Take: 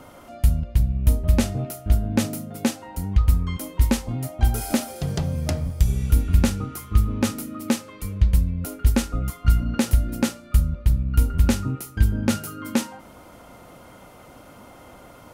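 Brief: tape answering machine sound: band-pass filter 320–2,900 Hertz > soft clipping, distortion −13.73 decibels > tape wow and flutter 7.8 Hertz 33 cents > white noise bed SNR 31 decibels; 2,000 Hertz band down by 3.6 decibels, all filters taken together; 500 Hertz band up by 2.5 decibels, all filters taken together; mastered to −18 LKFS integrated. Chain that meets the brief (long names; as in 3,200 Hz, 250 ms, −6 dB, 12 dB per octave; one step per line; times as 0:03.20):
band-pass filter 320–2,900 Hz
parametric band 500 Hz +4 dB
parametric band 2,000 Hz −4 dB
soft clipping −17 dBFS
tape wow and flutter 7.8 Hz 33 cents
white noise bed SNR 31 dB
level +16.5 dB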